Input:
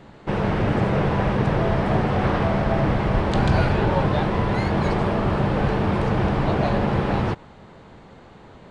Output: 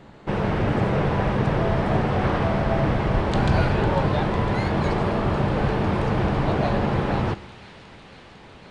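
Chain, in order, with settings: feedback echo behind a high-pass 502 ms, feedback 80%, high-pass 2.6 kHz, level -12 dB; on a send at -19 dB: reverberation RT60 0.95 s, pre-delay 100 ms; on the sum: trim -1 dB

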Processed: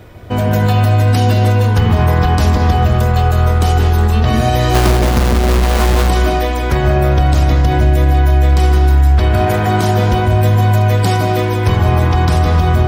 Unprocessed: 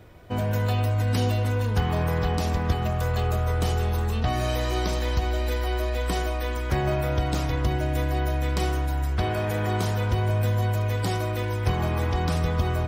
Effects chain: 4.74–6.09 s: square wave that keeps the level; on a send at -4 dB: reverberation RT60 0.75 s, pre-delay 145 ms; on the sum: loudness maximiser +13.5 dB; trim -2.5 dB

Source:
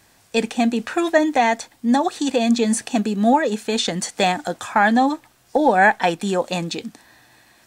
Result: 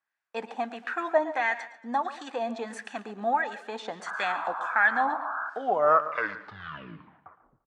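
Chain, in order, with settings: tape stop on the ending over 2.29 s; painted sound noise, 4.06–5.50 s, 610–1700 Hz -29 dBFS; gate -40 dBFS, range -22 dB; LFO band-pass sine 1.5 Hz 850–1700 Hz; echo from a far wall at 24 m, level -16 dB; modulated delay 115 ms, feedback 42%, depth 82 cents, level -17 dB; trim -1 dB

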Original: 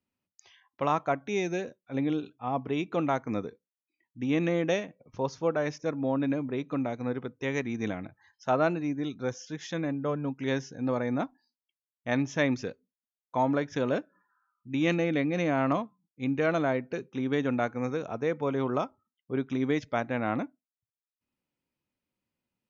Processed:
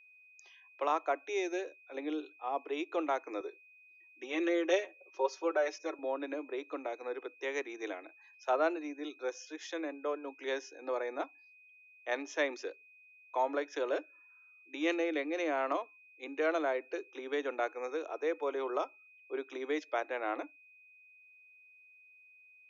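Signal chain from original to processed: steep high-pass 310 Hz 72 dB/octave; 3.40–5.99 s: comb 5.3 ms, depth 74%; whistle 2.5 kHz -54 dBFS; trim -4 dB

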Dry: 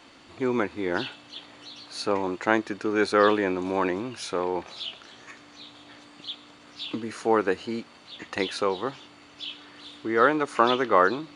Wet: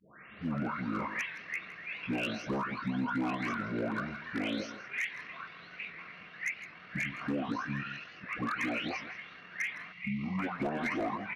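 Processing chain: delay that grows with frequency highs late, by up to 420 ms; frequency weighting D; time-frequency box 9.91–10.39 s, 400–3100 Hz -22 dB; treble shelf 8.3 kHz -8.5 dB; band-stop 1.4 kHz, Q 5.3; compression 10:1, threshold -25 dBFS, peak gain reduction 10.5 dB; wavefolder -21.5 dBFS; pitch shift -8.5 st; echo from a far wall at 28 m, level -13 dB; warped record 78 rpm, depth 100 cents; trim -4 dB

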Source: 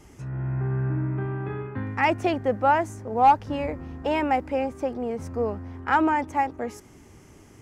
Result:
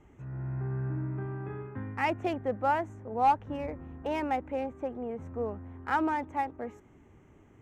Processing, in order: local Wiener filter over 9 samples; trim -7 dB

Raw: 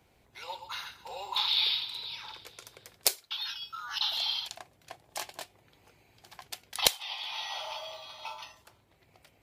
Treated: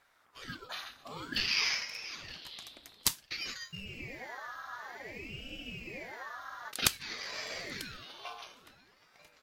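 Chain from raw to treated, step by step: delay 942 ms -18.5 dB; spectral freeze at 3.88 s, 2.82 s; ring modulator with a swept carrier 830 Hz, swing 80%, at 0.54 Hz

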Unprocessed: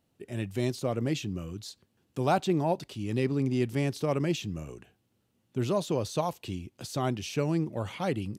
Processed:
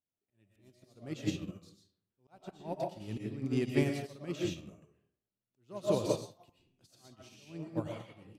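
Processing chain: slow attack 358 ms; algorithmic reverb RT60 0.69 s, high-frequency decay 0.6×, pre-delay 80 ms, DRR -2.5 dB; upward expansion 2.5:1, over -41 dBFS

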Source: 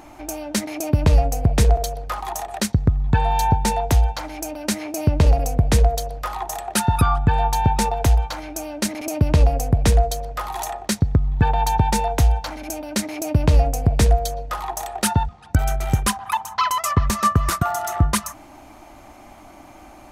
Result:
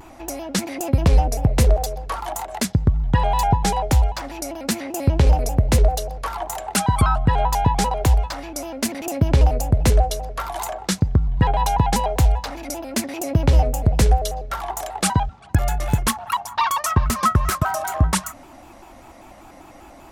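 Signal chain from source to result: vibrato with a chosen wave square 5.1 Hz, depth 160 cents

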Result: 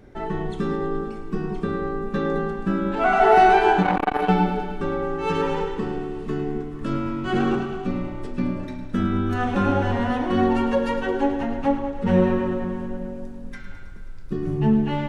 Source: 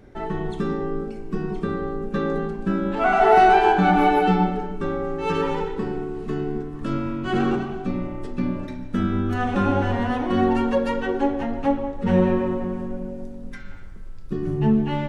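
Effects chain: on a send: thinning echo 107 ms, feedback 74%, high-pass 420 Hz, level -12 dB; 3.82–4.29 s: on the sum: transformer saturation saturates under 670 Hz

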